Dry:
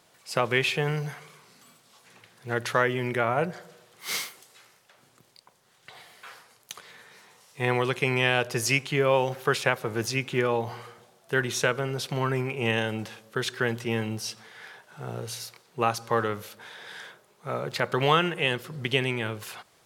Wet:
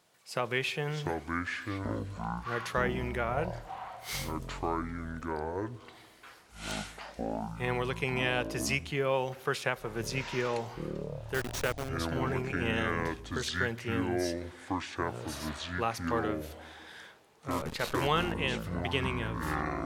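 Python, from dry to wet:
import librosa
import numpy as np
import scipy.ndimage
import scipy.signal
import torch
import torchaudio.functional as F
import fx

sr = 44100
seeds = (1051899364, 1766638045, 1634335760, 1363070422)

y = fx.delta_hold(x, sr, step_db=-23.5, at=(11.34, 11.89))
y = fx.echo_pitch(y, sr, ms=511, semitones=-7, count=3, db_per_echo=-3.0)
y = F.gain(torch.from_numpy(y), -7.0).numpy()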